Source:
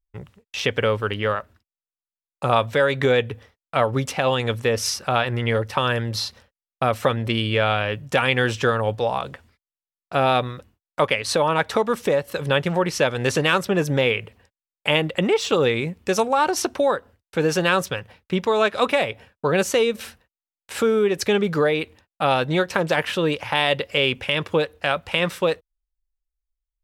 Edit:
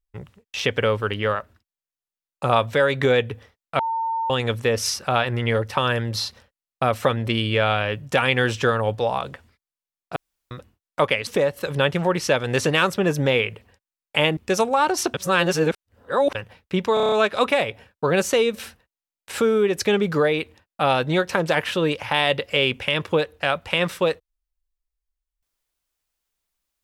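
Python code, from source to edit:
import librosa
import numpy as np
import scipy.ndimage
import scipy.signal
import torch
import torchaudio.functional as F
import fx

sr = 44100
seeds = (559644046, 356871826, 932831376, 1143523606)

y = fx.edit(x, sr, fx.bleep(start_s=3.79, length_s=0.51, hz=905.0, db=-21.5),
    fx.room_tone_fill(start_s=10.16, length_s=0.35),
    fx.cut(start_s=11.27, length_s=0.71),
    fx.cut(start_s=15.08, length_s=0.88),
    fx.reverse_span(start_s=16.73, length_s=1.21),
    fx.stutter(start_s=18.53, slice_s=0.03, count=7), tone=tone)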